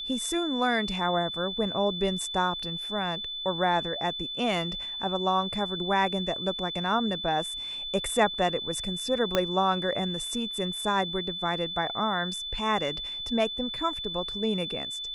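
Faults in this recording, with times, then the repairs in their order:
whistle 3,500 Hz −33 dBFS
0:09.35: click −9 dBFS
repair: click removal
notch filter 3,500 Hz, Q 30

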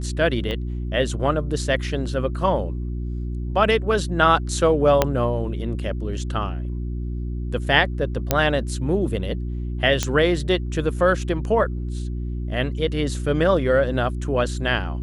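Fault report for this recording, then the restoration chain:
mains hum 60 Hz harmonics 6 −27 dBFS
0:00.51: click −16 dBFS
0:05.02: click −2 dBFS
0:08.31: click −2 dBFS
0:10.03: click −7 dBFS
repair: click removal
hum removal 60 Hz, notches 6

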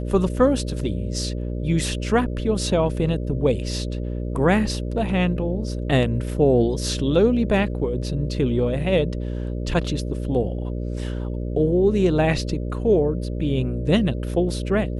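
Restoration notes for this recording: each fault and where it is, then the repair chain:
mains buzz 60 Hz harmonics 10 −27 dBFS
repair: hum removal 60 Hz, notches 10

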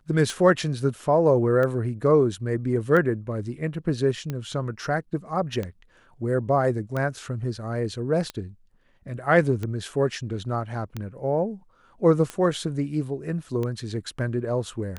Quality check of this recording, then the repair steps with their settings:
scratch tick 45 rpm −17 dBFS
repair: click removal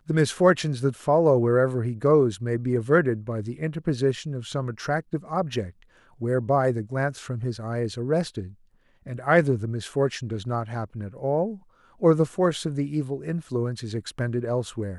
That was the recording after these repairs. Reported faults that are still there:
none of them is left

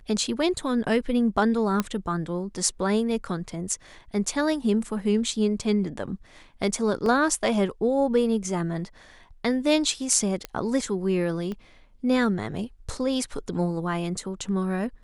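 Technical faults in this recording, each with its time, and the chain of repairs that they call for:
0:01.80: click −10 dBFS
0:07.06: drop-out 2.5 ms
0:10.45: click −15 dBFS
0:11.52: click −22 dBFS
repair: click removal
repair the gap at 0:07.06, 2.5 ms

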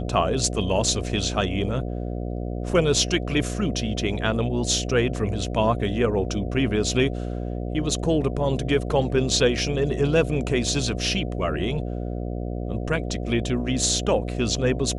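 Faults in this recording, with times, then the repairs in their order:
mains buzz 60 Hz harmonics 12 −29 dBFS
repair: hum removal 60 Hz, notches 12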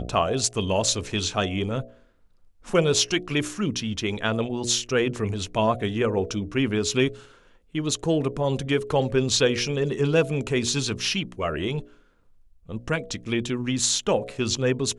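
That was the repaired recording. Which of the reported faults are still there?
none of them is left

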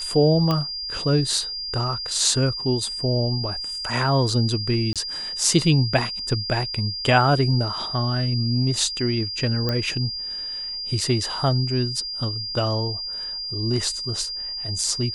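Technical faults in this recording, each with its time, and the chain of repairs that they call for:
whistle 4,800 Hz −28 dBFS
0:00.51: click −11 dBFS
0:04.93–0:04.96: drop-out 27 ms
0:09.69: click −11 dBFS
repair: click removal
notch filter 4,800 Hz, Q 30
repair the gap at 0:04.93, 27 ms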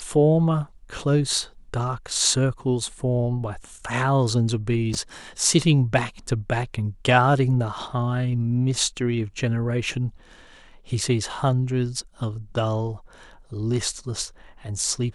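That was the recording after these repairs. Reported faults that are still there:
none of them is left

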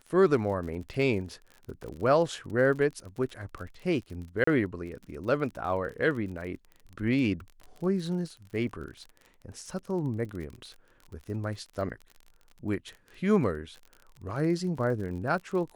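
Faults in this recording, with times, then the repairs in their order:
surface crackle 39 per second −38 dBFS
0:04.44–0:04.47: drop-out 34 ms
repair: click removal
repair the gap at 0:04.44, 34 ms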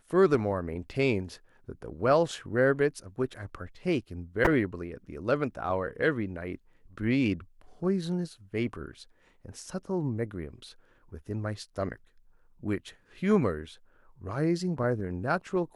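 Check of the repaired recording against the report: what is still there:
none of them is left

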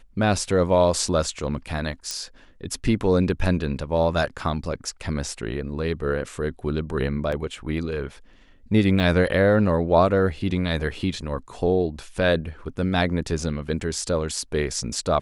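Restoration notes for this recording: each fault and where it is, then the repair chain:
0:02.11: click −14 dBFS
0:07.32: drop-out 4.2 ms
0:09.00: drop-out 4.1 ms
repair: click removal
repair the gap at 0:07.32, 4.2 ms
repair the gap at 0:09.00, 4.1 ms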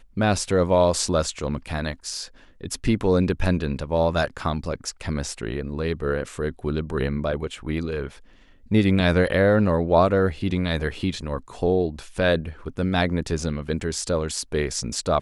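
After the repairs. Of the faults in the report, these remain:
none of them is left

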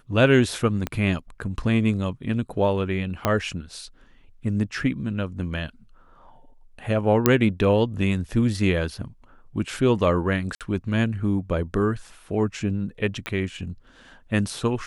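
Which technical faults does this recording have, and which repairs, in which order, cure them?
0:00.87: click −13 dBFS
0:03.25: click −6 dBFS
0:07.26: click −2 dBFS
0:10.55–0:10.61: drop-out 57 ms
0:13.26: click −15 dBFS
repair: click removal
repair the gap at 0:10.55, 57 ms

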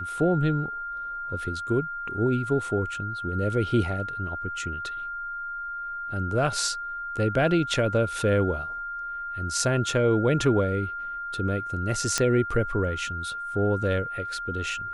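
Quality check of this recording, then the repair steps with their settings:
whistle 1,400 Hz −31 dBFS
0:12.18: click −8 dBFS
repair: click removal
notch filter 1,400 Hz, Q 30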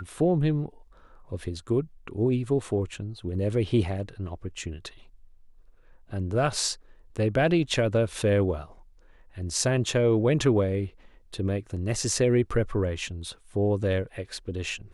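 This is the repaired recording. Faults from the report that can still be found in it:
none of them is left

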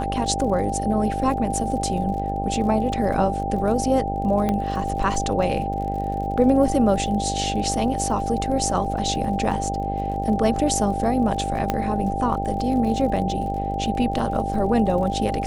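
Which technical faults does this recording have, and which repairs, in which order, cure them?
mains buzz 50 Hz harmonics 17 −28 dBFS
surface crackle 43 per second −32 dBFS
whistle 790 Hz −26 dBFS
0:04.49: click −11 dBFS
0:11.70: click −8 dBFS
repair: click removal
hum removal 50 Hz, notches 17
notch filter 790 Hz, Q 30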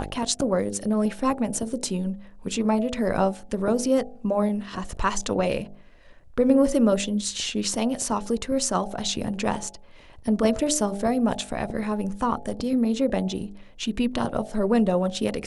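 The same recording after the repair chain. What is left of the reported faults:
none of them is left

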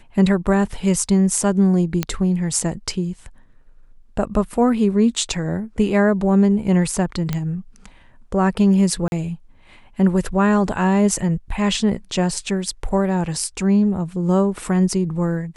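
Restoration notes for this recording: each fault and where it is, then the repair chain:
0:02.03: click −6 dBFS
0:07.33: click −9 dBFS
0:09.08–0:09.12: drop-out 41 ms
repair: click removal
repair the gap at 0:09.08, 41 ms

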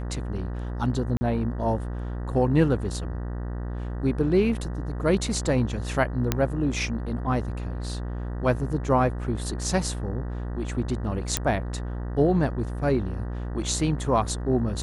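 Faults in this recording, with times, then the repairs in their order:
mains buzz 60 Hz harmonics 32 −31 dBFS
0:01.17–0:01.21: drop-out 40 ms
0:06.32: click −7 dBFS
0:11.37: click −5 dBFS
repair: click removal
hum removal 60 Hz, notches 32
repair the gap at 0:01.17, 40 ms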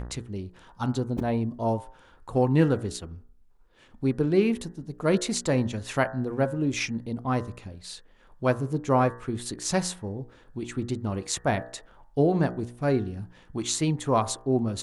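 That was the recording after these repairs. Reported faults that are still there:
none of them is left

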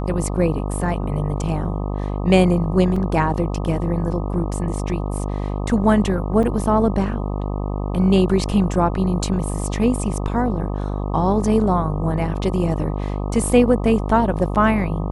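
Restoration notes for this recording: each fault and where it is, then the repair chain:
mains buzz 50 Hz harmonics 25 −24 dBFS
0:02.96: drop-out 3.7 ms
0:06.43: drop-out 3.6 ms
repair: hum removal 50 Hz, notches 25
repair the gap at 0:02.96, 3.7 ms
repair the gap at 0:06.43, 3.6 ms

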